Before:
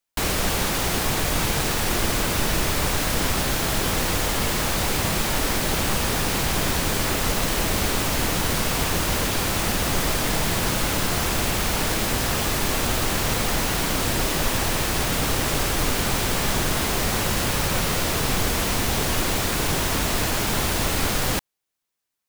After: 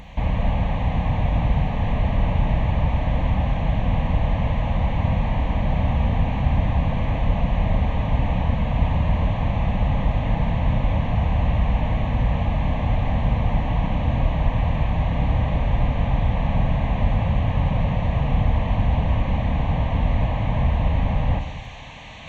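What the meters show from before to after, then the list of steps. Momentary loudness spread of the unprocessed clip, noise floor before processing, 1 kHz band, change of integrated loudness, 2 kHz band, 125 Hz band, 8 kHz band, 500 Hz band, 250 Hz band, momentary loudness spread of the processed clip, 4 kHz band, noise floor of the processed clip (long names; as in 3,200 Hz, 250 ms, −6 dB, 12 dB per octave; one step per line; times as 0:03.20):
0 LU, −25 dBFS, −2.0 dB, −0.5 dB, −9.0 dB, +7.5 dB, below −30 dB, −3.0 dB, +1.0 dB, 2 LU, −15.0 dB, −26 dBFS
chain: linear delta modulator 32 kbit/s, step −37.5 dBFS
high-pass filter 40 Hz 12 dB per octave
spectral tilt −2.5 dB per octave
reversed playback
upward compression, threshold −28 dBFS
reversed playback
phaser with its sweep stopped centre 1,400 Hz, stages 6
on a send: backwards echo 626 ms −18.5 dB
on the sum: four-comb reverb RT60 1.5 s, combs from 28 ms, DRR 6.5 dB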